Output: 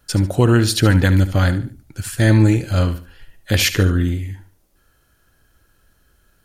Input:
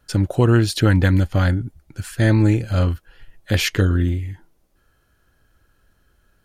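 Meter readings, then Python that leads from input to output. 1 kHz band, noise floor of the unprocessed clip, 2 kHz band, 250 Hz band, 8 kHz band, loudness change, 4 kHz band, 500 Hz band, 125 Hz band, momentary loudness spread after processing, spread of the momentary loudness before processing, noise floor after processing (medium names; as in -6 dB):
+2.0 dB, -63 dBFS, +2.5 dB, +2.0 dB, +7.0 dB, +2.0 dB, +4.5 dB, +1.5 dB, +1.5 dB, 14 LU, 15 LU, -61 dBFS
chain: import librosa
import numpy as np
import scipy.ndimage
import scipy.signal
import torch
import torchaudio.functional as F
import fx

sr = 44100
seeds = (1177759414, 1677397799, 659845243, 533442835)

p1 = fx.high_shelf(x, sr, hz=4400.0, db=7.0)
p2 = p1 + fx.echo_feedback(p1, sr, ms=73, feedback_pct=31, wet_db=-13.0, dry=0)
y = F.gain(torch.from_numpy(p2), 1.5).numpy()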